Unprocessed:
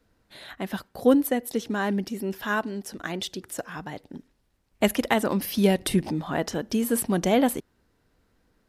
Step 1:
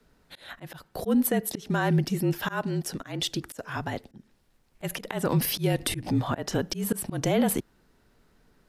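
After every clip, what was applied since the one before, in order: frequency shift -39 Hz; auto swell 0.23 s; limiter -19.5 dBFS, peak gain reduction 9.5 dB; gain +4.5 dB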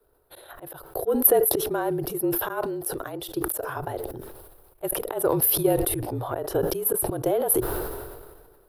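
EQ curve 120 Hz 0 dB, 210 Hz -18 dB, 370 Hz +9 dB, 1400 Hz +1 dB, 2000 Hz -10 dB, 3800 Hz -5 dB, 6900 Hz -12 dB, 11000 Hz +13 dB; transient shaper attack +7 dB, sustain +1 dB; sustainer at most 35 dB/s; gain -7 dB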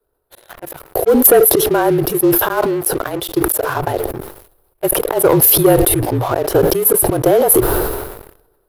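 sample leveller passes 3; gain +1.5 dB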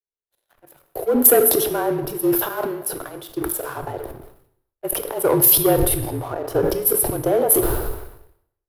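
on a send at -8 dB: reverb, pre-delay 3 ms; on the sum: three-band expander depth 70%; gain -8 dB

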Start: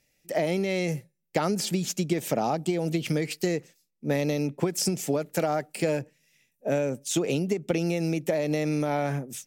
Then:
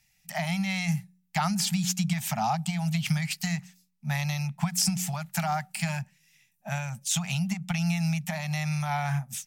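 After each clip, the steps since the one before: elliptic band-stop 180–770 Hz, stop band 40 dB; bell 220 Hz +8.5 dB 0.27 oct; de-hum 182.1 Hz, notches 3; gain +3 dB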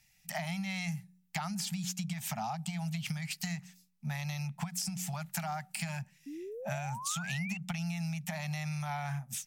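compressor 6:1, threshold -34 dBFS, peak gain reduction 12.5 dB; painted sound rise, 6.26–7.58, 270–2800 Hz -42 dBFS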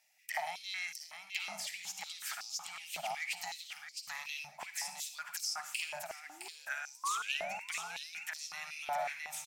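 feedback echo 0.662 s, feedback 28%, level -5 dB; reverb RT60 0.40 s, pre-delay 48 ms, DRR 9.5 dB; stepped high-pass 5.4 Hz 620–5100 Hz; gain -4.5 dB

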